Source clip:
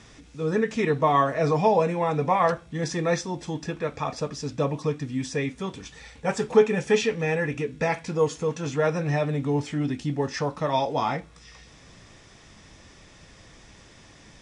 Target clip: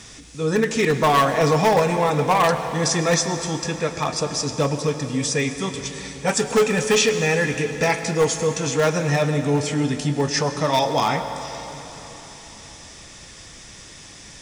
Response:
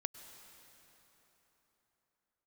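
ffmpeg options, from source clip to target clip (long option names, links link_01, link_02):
-filter_complex "[0:a]asoftclip=type=hard:threshold=-17dB,crystalizer=i=3:c=0[link_01];[1:a]atrim=start_sample=2205[link_02];[link_01][link_02]afir=irnorm=-1:irlink=0,volume=6dB"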